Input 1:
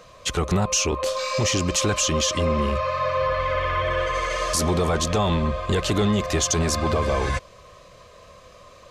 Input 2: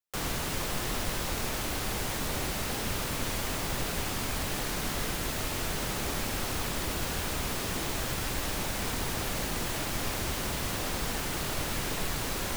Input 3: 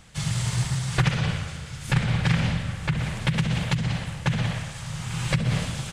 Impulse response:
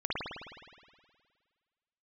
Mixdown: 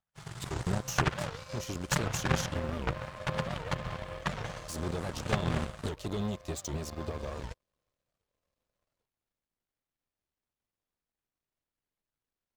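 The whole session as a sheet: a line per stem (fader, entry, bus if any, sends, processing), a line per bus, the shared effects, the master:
-0.5 dB, 0.15 s, no send, peaking EQ 1.5 kHz -9 dB 1.9 oct
-17.5 dB, 0.00 s, no send, peak limiter -24.5 dBFS, peak gain reduction 6 dB
-2.0 dB, 0.00 s, no send, high-order bell 990 Hz +8 dB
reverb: none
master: treble shelf 4.9 kHz -4 dB; power-law waveshaper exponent 2; warped record 78 rpm, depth 250 cents

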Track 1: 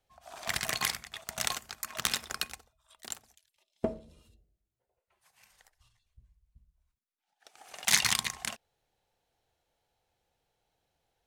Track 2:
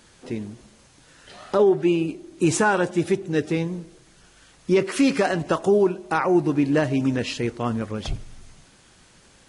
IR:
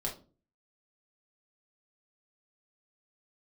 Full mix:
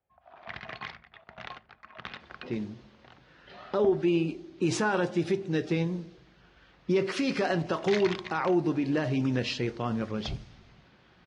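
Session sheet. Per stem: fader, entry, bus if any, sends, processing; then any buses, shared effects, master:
-5.0 dB, 0.00 s, send -19 dB, Gaussian low-pass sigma 2.3 samples
-5.5 dB, 2.20 s, send -12 dB, resonant high shelf 6.6 kHz -10 dB, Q 1.5; peak limiter -15 dBFS, peak gain reduction 5.5 dB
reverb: on, RT60 0.35 s, pre-delay 5 ms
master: level-controlled noise filter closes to 2.4 kHz, open at -24.5 dBFS; high-pass 53 Hz

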